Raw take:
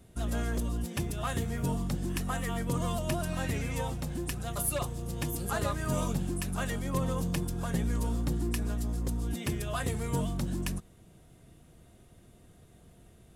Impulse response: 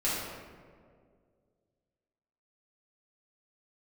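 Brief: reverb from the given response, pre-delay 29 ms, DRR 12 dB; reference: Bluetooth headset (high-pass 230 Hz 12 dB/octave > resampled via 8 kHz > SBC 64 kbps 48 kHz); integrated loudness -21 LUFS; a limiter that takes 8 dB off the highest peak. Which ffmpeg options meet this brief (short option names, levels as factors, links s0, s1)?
-filter_complex "[0:a]alimiter=level_in=1.12:limit=0.0631:level=0:latency=1,volume=0.891,asplit=2[s0][s1];[1:a]atrim=start_sample=2205,adelay=29[s2];[s1][s2]afir=irnorm=-1:irlink=0,volume=0.0891[s3];[s0][s3]amix=inputs=2:normalize=0,highpass=230,aresample=8000,aresample=44100,volume=8.41" -ar 48000 -c:a sbc -b:a 64k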